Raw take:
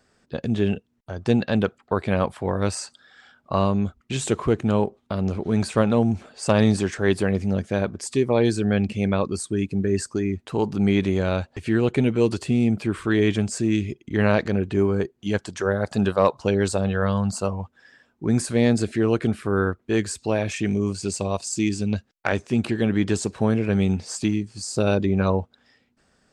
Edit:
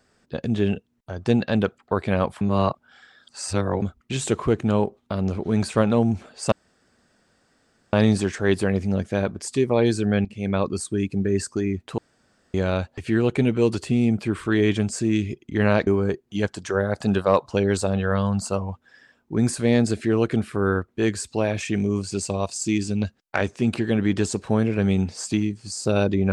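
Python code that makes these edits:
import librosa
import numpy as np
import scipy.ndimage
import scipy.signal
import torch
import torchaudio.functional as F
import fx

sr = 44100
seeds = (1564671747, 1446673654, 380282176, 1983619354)

y = fx.edit(x, sr, fx.reverse_span(start_s=2.41, length_s=1.41),
    fx.insert_room_tone(at_s=6.52, length_s=1.41),
    fx.fade_in_from(start_s=8.84, length_s=0.33, floor_db=-18.5),
    fx.room_tone_fill(start_s=10.57, length_s=0.56),
    fx.cut(start_s=14.46, length_s=0.32), tone=tone)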